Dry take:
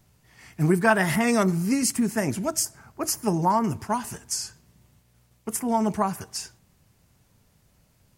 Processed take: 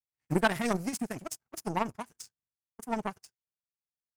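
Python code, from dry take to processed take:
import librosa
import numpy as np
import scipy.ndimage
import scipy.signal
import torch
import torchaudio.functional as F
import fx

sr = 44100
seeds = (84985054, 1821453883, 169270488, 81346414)

y = fx.stretch_vocoder(x, sr, factor=0.51)
y = fx.power_curve(y, sr, exponent=2.0)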